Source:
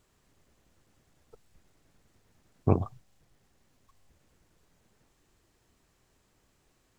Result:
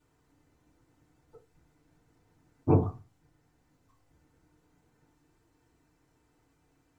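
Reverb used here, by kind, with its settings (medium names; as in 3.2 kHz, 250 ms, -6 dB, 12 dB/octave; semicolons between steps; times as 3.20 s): FDN reverb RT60 0.3 s, low-frequency decay 1.2×, high-frequency decay 0.4×, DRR -10 dB; trim -11.5 dB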